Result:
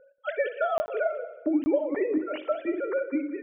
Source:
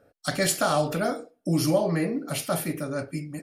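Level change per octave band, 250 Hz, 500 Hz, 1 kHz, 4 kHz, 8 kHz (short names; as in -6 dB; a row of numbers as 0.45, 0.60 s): -1.0 dB, +0.5 dB, -4.0 dB, under -15 dB, under -30 dB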